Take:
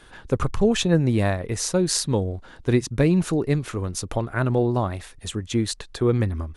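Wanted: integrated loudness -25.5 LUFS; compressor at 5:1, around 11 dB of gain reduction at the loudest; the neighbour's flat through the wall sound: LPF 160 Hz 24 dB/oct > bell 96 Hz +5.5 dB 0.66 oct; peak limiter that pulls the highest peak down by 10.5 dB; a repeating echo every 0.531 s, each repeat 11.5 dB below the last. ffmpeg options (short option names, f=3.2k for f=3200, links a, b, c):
-af "acompressor=threshold=-27dB:ratio=5,alimiter=limit=-22.5dB:level=0:latency=1,lowpass=f=160:w=0.5412,lowpass=f=160:w=1.3066,equalizer=f=96:t=o:w=0.66:g=5.5,aecho=1:1:531|1062|1593:0.266|0.0718|0.0194,volume=9dB"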